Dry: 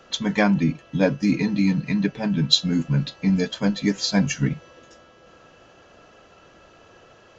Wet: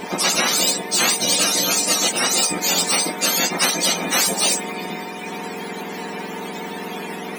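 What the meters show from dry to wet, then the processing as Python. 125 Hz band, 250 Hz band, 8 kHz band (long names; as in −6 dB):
−11.5 dB, −7.5 dB, can't be measured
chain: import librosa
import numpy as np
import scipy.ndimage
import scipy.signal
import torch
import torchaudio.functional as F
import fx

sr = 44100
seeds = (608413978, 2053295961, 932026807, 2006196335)

y = fx.octave_mirror(x, sr, pivot_hz=1100.0)
y = fx.spectral_comp(y, sr, ratio=10.0)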